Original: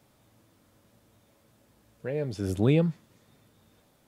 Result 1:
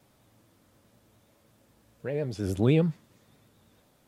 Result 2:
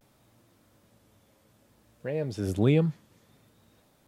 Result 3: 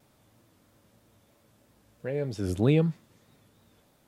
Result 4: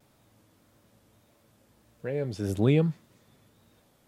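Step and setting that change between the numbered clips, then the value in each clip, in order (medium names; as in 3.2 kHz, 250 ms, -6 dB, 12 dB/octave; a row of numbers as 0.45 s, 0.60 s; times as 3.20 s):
vibrato, rate: 9.6 Hz, 0.59 Hz, 3.1 Hz, 1.7 Hz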